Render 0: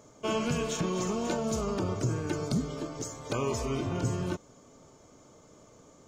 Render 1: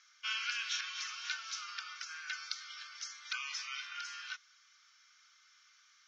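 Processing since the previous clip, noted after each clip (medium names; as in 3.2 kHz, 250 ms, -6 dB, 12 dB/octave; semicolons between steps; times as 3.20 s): Chebyshev band-pass 1.4–5.7 kHz, order 4; trim +4 dB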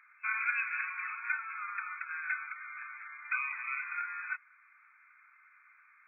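FFT band-pass 800–2600 Hz; trim +8 dB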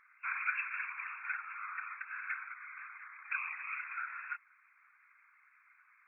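whisper effect; trim -4 dB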